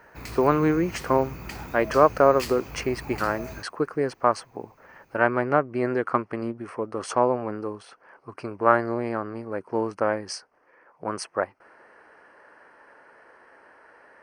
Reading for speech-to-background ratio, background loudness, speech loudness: 13.0 dB, -38.5 LUFS, -25.5 LUFS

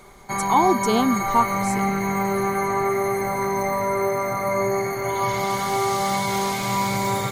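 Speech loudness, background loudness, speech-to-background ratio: -22.5 LUFS, -23.5 LUFS, 1.0 dB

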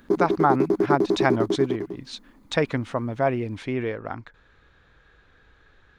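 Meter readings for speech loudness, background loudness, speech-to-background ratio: -26.0 LUFS, -24.5 LUFS, -1.5 dB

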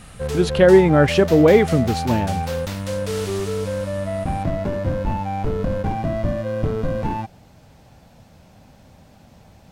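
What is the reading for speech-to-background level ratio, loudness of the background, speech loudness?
9.0 dB, -25.0 LUFS, -16.0 LUFS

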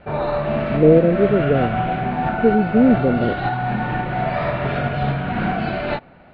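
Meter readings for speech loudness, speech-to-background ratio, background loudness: -17.5 LUFS, 5.0 dB, -22.5 LUFS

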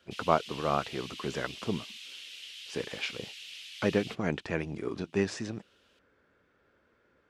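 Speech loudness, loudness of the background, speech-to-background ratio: -33.5 LUFS, -43.0 LUFS, 9.5 dB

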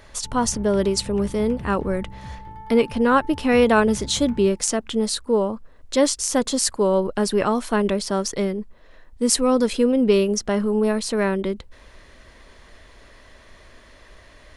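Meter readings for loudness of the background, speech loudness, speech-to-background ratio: -38.0 LUFS, -21.0 LUFS, 17.0 dB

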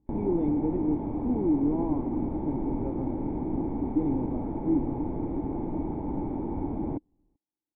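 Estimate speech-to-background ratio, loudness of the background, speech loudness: 1.0 dB, -32.0 LUFS, -31.0 LUFS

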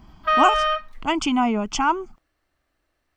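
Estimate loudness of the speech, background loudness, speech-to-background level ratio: -22.5 LUFS, -21.0 LUFS, -1.5 dB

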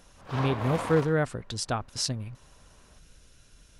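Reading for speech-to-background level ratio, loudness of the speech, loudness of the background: 6.5 dB, -29.0 LUFS, -35.5 LUFS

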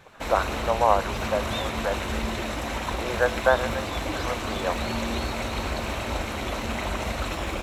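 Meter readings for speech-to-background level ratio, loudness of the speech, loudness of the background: 2.0 dB, -27.5 LUFS, -29.5 LUFS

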